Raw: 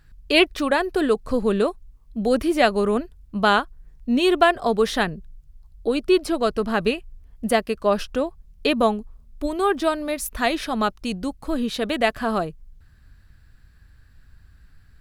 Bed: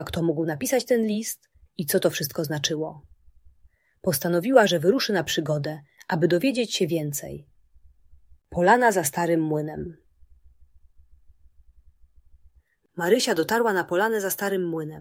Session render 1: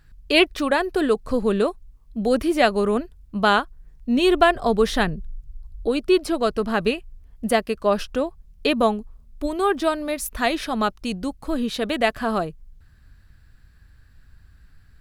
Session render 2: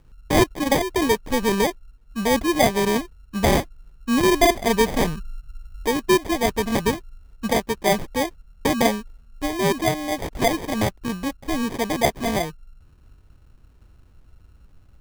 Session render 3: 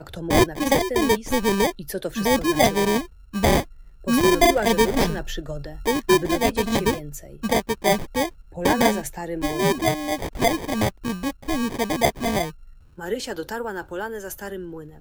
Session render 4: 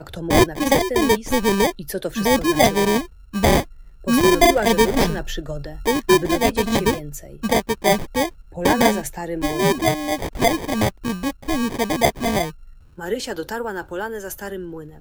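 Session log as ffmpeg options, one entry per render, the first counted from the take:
ffmpeg -i in.wav -filter_complex "[0:a]asettb=1/sr,asplit=3[link_01][link_02][link_03];[link_01]atrim=end=4.184[link_04];[link_02]atrim=start=4.18:end=5.87,asetpts=PTS-STARTPTS,afade=type=in:duration=0.004:curve=qsin,afade=type=out:start_time=1.686:duration=0.004:curve=qsin,lowshelf=frequency=120:gain=10[link_05];[link_03]atrim=start=5.866[link_06];[link_04][link_05]acrossfade=duration=0.004:curve1=hsin:curve2=qsin[link_07];[link_07][link_06]acrossfade=duration=0.004:curve1=qsin:curve2=hsin" out.wav
ffmpeg -i in.wav -af "acrusher=samples=32:mix=1:aa=0.000001" out.wav
ffmpeg -i in.wav -i bed.wav -filter_complex "[1:a]volume=-7.5dB[link_01];[0:a][link_01]amix=inputs=2:normalize=0" out.wav
ffmpeg -i in.wav -af "volume=2.5dB" out.wav

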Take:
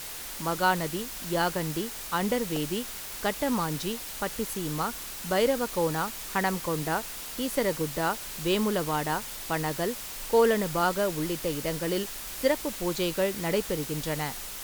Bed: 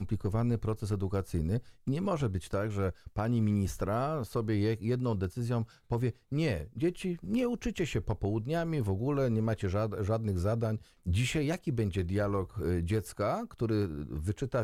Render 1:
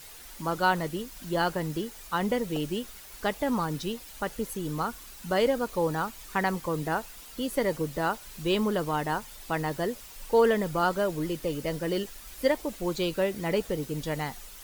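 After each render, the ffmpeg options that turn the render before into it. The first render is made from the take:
ffmpeg -i in.wav -af "afftdn=noise_reduction=10:noise_floor=-39" out.wav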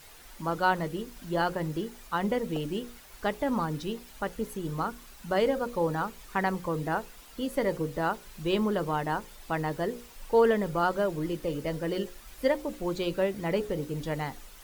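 ffmpeg -i in.wav -af "highshelf=frequency=3100:gain=-7,bandreject=frequency=60:width_type=h:width=6,bandreject=frequency=120:width_type=h:width=6,bandreject=frequency=180:width_type=h:width=6,bandreject=frequency=240:width_type=h:width=6,bandreject=frequency=300:width_type=h:width=6,bandreject=frequency=360:width_type=h:width=6,bandreject=frequency=420:width_type=h:width=6,bandreject=frequency=480:width_type=h:width=6,bandreject=frequency=540:width_type=h:width=6" out.wav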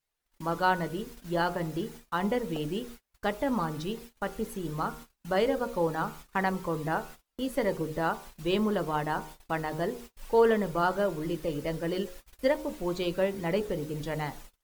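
ffmpeg -i in.wav -af "bandreject=frequency=77.78:width_type=h:width=4,bandreject=frequency=155.56:width_type=h:width=4,bandreject=frequency=233.34:width_type=h:width=4,bandreject=frequency=311.12:width_type=h:width=4,bandreject=frequency=388.9:width_type=h:width=4,bandreject=frequency=466.68:width_type=h:width=4,bandreject=frequency=544.46:width_type=h:width=4,bandreject=frequency=622.24:width_type=h:width=4,bandreject=frequency=700.02:width_type=h:width=4,bandreject=frequency=777.8:width_type=h:width=4,bandreject=frequency=855.58:width_type=h:width=4,bandreject=frequency=933.36:width_type=h:width=4,bandreject=frequency=1011.14:width_type=h:width=4,bandreject=frequency=1088.92:width_type=h:width=4,bandreject=frequency=1166.7:width_type=h:width=4,bandreject=frequency=1244.48:width_type=h:width=4,bandreject=frequency=1322.26:width_type=h:width=4,bandreject=frequency=1400.04:width_type=h:width=4,bandreject=frequency=1477.82:width_type=h:width=4,agate=range=-34dB:threshold=-44dB:ratio=16:detection=peak" out.wav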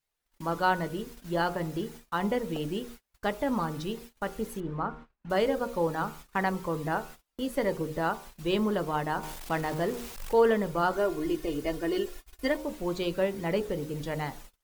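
ffmpeg -i in.wav -filter_complex "[0:a]asettb=1/sr,asplit=3[link_01][link_02][link_03];[link_01]atrim=end=4.604[link_04];[link_02]atrim=start=4.6:end=5.3,asetpts=PTS-STARTPTS,afade=type=in:duration=0.004:curve=qsin,afade=type=out:start_time=0.696:duration=0.004:curve=qsin,lowpass=1900[link_05];[link_03]atrim=start=5.296[link_06];[link_04][link_05]acrossfade=duration=0.004:curve1=hsin:curve2=qsin[link_07];[link_07][link_06]acrossfade=duration=0.004:curve1=qsin:curve2=hsin,asettb=1/sr,asplit=3[link_08][link_09][link_10];[link_08]atrim=end=9.234[link_11];[link_09]atrim=start=9.23:end=10.33,asetpts=PTS-STARTPTS,afade=type=in:duration=0.004:curve=qsin,afade=type=out:start_time=1.096:duration=0.004:curve=qsin,aeval=exprs='val(0)+0.5*0.0141*sgn(val(0))':channel_layout=same[link_12];[link_10]atrim=start=10.326[link_13];[link_11][link_12]acrossfade=duration=0.004:curve1=hsin:curve2=qsin[link_14];[link_14][link_13]acrossfade=duration=0.004:curve1=qsin:curve2=hsin,asettb=1/sr,asplit=3[link_15][link_16][link_17];[link_15]atrim=end=10.934[link_18];[link_16]atrim=start=10.93:end=12.57,asetpts=PTS-STARTPTS,afade=type=in:duration=0.004:curve=qsin,afade=type=out:start_time=1.636:duration=0.004:curve=qsin,aecho=1:1:2.8:0.65,atrim=end_sample=72324[link_19];[link_17]atrim=start=12.566[link_20];[link_18][link_19]acrossfade=duration=0.004:curve1=hsin:curve2=qsin[link_21];[link_21][link_20]acrossfade=duration=0.004:curve1=qsin:curve2=hsin" out.wav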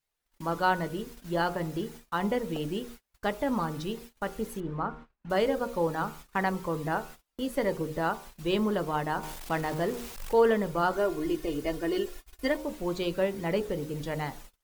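ffmpeg -i in.wav -af anull out.wav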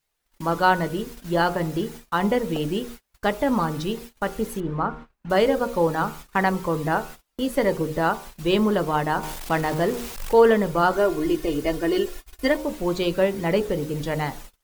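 ffmpeg -i in.wav -af "volume=7dB" out.wav

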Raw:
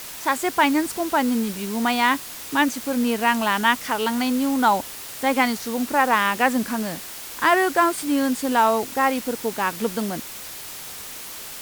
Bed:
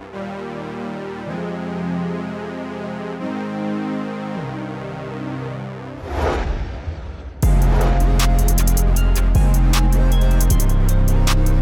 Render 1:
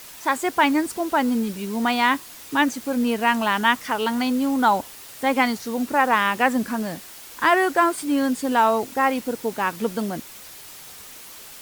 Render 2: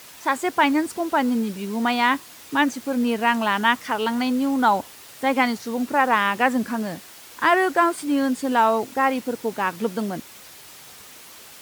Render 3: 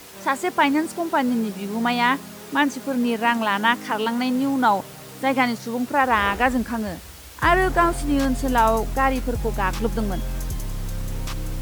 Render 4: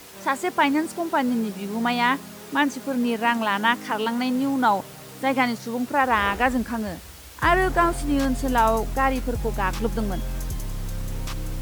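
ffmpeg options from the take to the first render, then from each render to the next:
ffmpeg -i in.wav -af "afftdn=noise_reduction=6:noise_floor=-36" out.wav
ffmpeg -i in.wav -af "highpass=65,highshelf=frequency=6800:gain=-4.5" out.wav
ffmpeg -i in.wav -i bed.wav -filter_complex "[1:a]volume=-13.5dB[link_01];[0:a][link_01]amix=inputs=2:normalize=0" out.wav
ffmpeg -i in.wav -af "volume=-1.5dB" out.wav

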